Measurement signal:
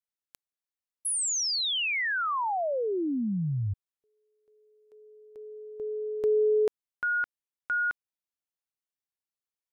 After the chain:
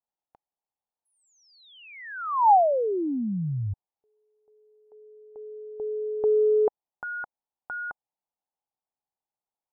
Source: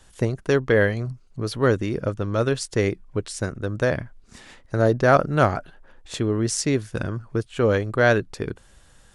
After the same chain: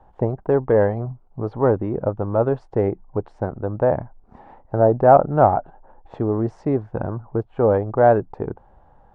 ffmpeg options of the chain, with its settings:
ffmpeg -i in.wav -af "acontrast=46,lowpass=frequency=830:width_type=q:width=4.9,volume=-5.5dB" out.wav

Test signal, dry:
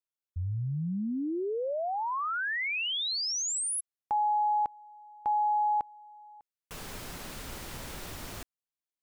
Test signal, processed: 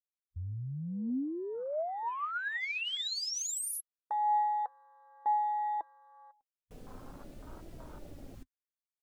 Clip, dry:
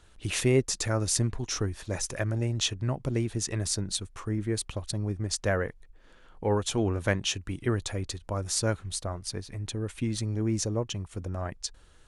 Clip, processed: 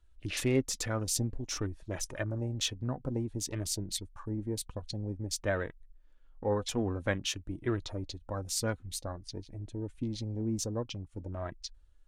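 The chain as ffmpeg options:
ffmpeg -i in.wav -af "afwtdn=0.00891,flanger=delay=3:depth=1.1:regen=59:speed=0.52:shape=triangular" out.wav

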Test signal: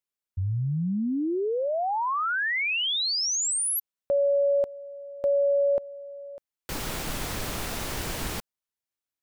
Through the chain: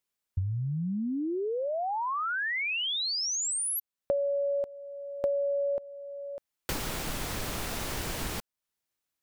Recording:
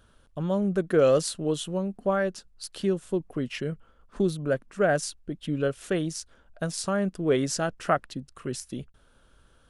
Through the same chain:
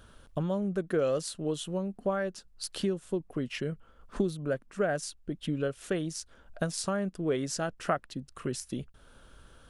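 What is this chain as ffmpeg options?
ffmpeg -i in.wav -af "acompressor=threshold=-43dB:ratio=2:attack=74:release=756:knee=1:detection=peak,volume=5dB" out.wav

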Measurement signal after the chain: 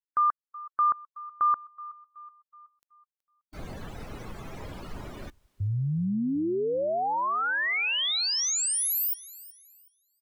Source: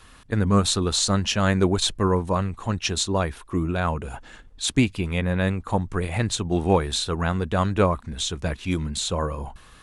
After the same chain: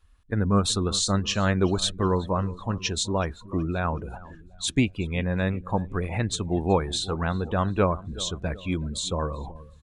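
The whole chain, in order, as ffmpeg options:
ffmpeg -i in.wav -filter_complex "[0:a]asplit=2[link_01][link_02];[link_02]aecho=0:1:374|748|1122|1496|1870:0.133|0.072|0.0389|0.021|0.0113[link_03];[link_01][link_03]amix=inputs=2:normalize=0,afftdn=noise_reduction=19:noise_floor=-37,volume=-2.5dB" out.wav

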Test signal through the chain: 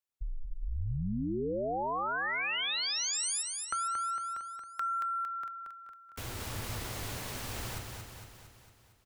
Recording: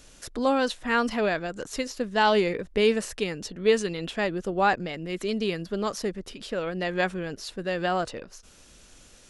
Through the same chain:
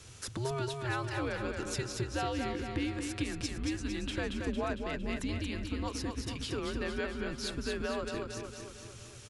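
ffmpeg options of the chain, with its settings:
ffmpeg -i in.wav -filter_complex "[0:a]acompressor=threshold=-33dB:ratio=6,asplit=2[link_01][link_02];[link_02]aecho=0:1:228|456|684|912|1140|1368|1596|1824:0.562|0.321|0.183|0.104|0.0594|0.0338|0.0193|0.011[link_03];[link_01][link_03]amix=inputs=2:normalize=0,afreqshift=-130" out.wav

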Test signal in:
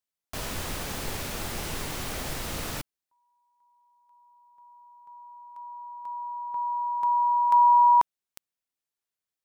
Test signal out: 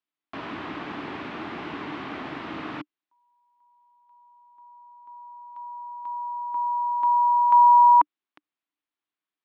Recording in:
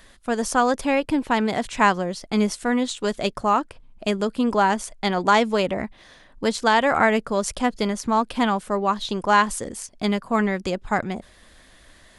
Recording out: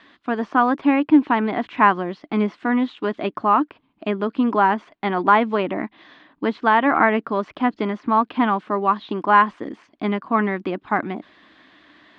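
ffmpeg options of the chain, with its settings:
ffmpeg -i in.wav -filter_complex "[0:a]acrossover=split=2600[link_01][link_02];[link_02]acompressor=threshold=-46dB:ratio=4:attack=1:release=60[link_03];[link_01][link_03]amix=inputs=2:normalize=0,crystalizer=i=1:c=0,highpass=200,equalizer=frequency=300:width_type=q:width=4:gain=10,equalizer=frequency=520:width_type=q:width=4:gain=-8,equalizer=frequency=1100:width_type=q:width=4:gain=4,lowpass=frequency=3500:width=0.5412,lowpass=frequency=3500:width=1.3066,volume=1.5dB" out.wav

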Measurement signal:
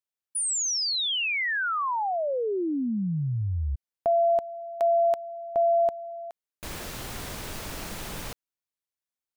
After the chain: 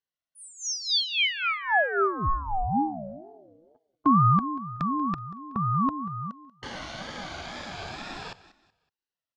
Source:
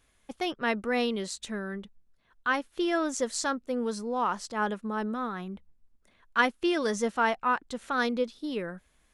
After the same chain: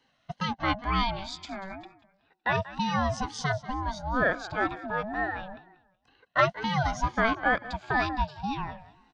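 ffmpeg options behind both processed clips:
ffmpeg -i in.wav -filter_complex "[0:a]afftfilt=real='re*pow(10,14/40*sin(2*PI*(1.6*log(max(b,1)*sr/1024/100)/log(2)-(0.32)*(pts-256)/sr)))':imag='im*pow(10,14/40*sin(2*PI*(1.6*log(max(b,1)*sr/1024/100)/log(2)-(0.32)*(pts-256)/sr)))':win_size=1024:overlap=0.75,acrossover=split=270|1100|3700[link_01][link_02][link_03][link_04];[link_01]acompressor=threshold=-44dB:ratio=12:attack=9.7:release=28:knee=1:detection=peak[link_05];[link_05][link_02][link_03][link_04]amix=inputs=4:normalize=0,highpass=190,equalizer=frequency=290:width_type=q:width=4:gain=9,equalizer=frequency=430:width_type=q:width=4:gain=-4,equalizer=frequency=1100:width_type=q:width=4:gain=5,equalizer=frequency=1700:width_type=q:width=4:gain=-5,lowpass=frequency=5100:width=0.5412,lowpass=frequency=5100:width=1.3066,aecho=1:1:187|374|561:0.141|0.0438|0.0136,aeval=exprs='val(0)*sin(2*PI*470*n/s+470*0.2/2.1*sin(2*PI*2.1*n/s))':channel_layout=same,volume=2dB" out.wav

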